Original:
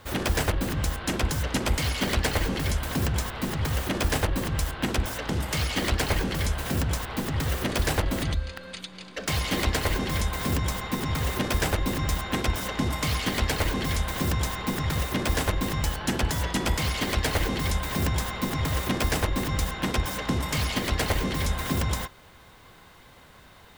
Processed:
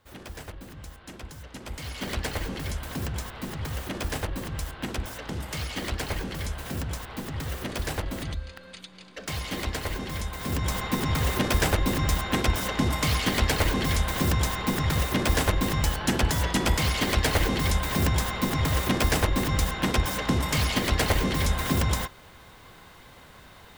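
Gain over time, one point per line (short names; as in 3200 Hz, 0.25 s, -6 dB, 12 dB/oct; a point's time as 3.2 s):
1.53 s -15.5 dB
2.11 s -5.5 dB
10.38 s -5.5 dB
10.78 s +2 dB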